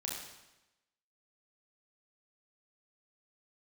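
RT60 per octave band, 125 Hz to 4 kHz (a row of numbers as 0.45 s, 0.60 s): 1.0 s, 1.0 s, 0.95 s, 1.0 s, 0.95 s, 0.95 s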